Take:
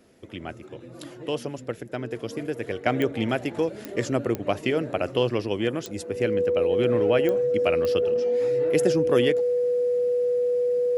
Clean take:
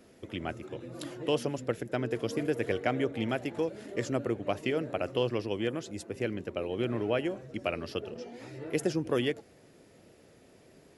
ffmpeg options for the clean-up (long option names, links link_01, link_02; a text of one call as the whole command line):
ffmpeg -i in.wav -af "adeclick=threshold=4,bandreject=frequency=490:width=30,asetnsamples=nb_out_samples=441:pad=0,asendcmd='2.86 volume volume -6dB',volume=0dB" out.wav